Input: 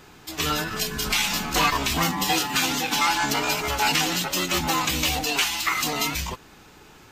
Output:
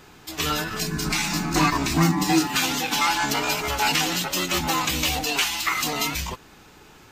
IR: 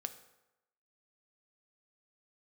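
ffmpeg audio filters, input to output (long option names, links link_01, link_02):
-filter_complex "[0:a]asettb=1/sr,asplit=3[link_01][link_02][link_03];[link_01]atrim=end=0.814[link_04];[link_02]atrim=start=0.81:end=2.47,asetpts=PTS-STARTPTS,afade=type=in:duration=0.004:curve=qsin,afade=type=out:start_time=1.656:duration=0.004:curve=qsin,equalizer=frequency=160:width_type=o:width=0.33:gain=11,equalizer=frequency=315:width_type=o:width=0.33:gain=12,equalizer=frequency=500:width_type=o:width=0.33:gain=-7,equalizer=frequency=3150:width_type=o:width=0.33:gain=-10,equalizer=frequency=12500:width_type=o:width=0.33:gain=-9[link_05];[link_03]atrim=start=2.466[link_06];[link_04][link_05]acrossfade=duration=0.004:curve1=hsin:curve2=qsin[link_07];[link_07][link_06]acrossfade=duration=0.004:curve1=qsin:curve2=hsin"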